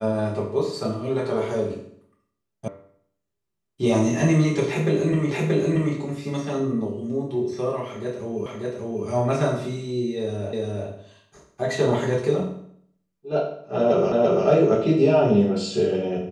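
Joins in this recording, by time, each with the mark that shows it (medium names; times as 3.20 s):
2.68 s: sound stops dead
5.31 s: repeat of the last 0.63 s
8.46 s: repeat of the last 0.59 s
10.53 s: repeat of the last 0.35 s
14.12 s: repeat of the last 0.34 s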